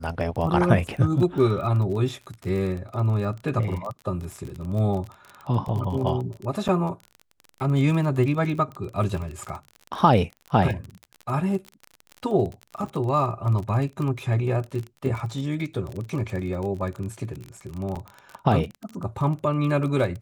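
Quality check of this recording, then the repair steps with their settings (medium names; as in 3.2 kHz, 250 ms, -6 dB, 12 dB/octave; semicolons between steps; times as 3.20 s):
crackle 31 per s -30 dBFS
6.68–6.69 s: dropout 7.1 ms
17.95–17.96 s: dropout 6.6 ms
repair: de-click; interpolate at 6.68 s, 7.1 ms; interpolate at 17.95 s, 6.6 ms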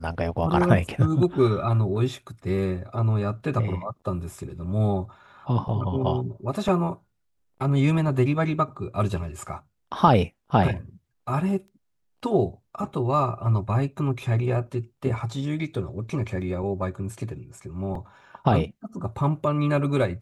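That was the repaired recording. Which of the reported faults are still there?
nothing left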